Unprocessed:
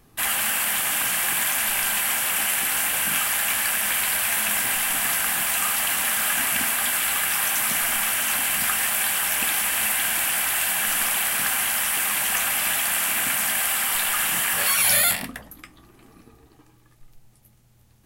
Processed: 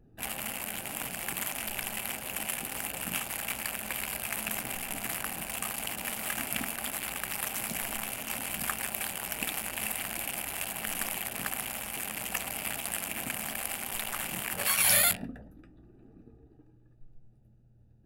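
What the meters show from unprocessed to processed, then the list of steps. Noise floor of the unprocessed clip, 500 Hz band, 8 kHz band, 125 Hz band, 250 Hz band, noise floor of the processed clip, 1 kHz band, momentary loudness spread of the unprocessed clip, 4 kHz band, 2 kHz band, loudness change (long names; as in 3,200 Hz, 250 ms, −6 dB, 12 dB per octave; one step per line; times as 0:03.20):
−56 dBFS, −5.0 dB, −11.5 dB, −2.0 dB, −2.5 dB, −59 dBFS, −10.0 dB, 1 LU, −11.0 dB, −12.0 dB, −11.5 dB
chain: adaptive Wiener filter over 41 samples
level −2 dB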